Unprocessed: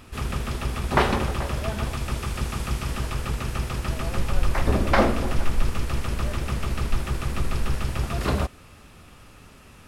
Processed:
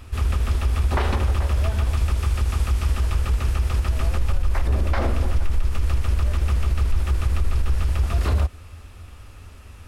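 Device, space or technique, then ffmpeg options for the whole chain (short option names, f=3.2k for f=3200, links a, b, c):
car stereo with a boomy subwoofer: -af "lowshelf=f=110:t=q:w=3:g=7.5,alimiter=limit=-12.5dB:level=0:latency=1:release=68"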